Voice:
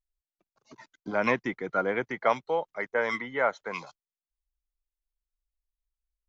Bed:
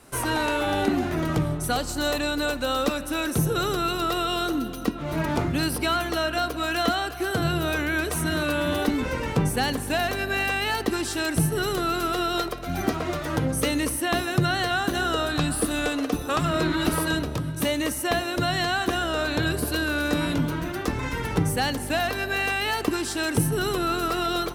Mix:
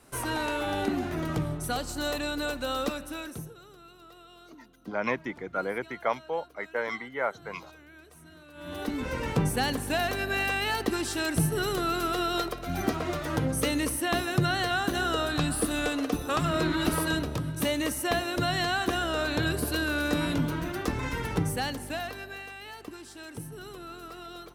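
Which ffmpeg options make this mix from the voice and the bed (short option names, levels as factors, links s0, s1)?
-filter_complex "[0:a]adelay=3800,volume=0.668[s0];[1:a]volume=7.94,afade=t=out:st=2.83:d=0.73:silence=0.0891251,afade=t=in:st=8.53:d=0.72:silence=0.0668344,afade=t=out:st=21.14:d=1.33:silence=0.188365[s1];[s0][s1]amix=inputs=2:normalize=0"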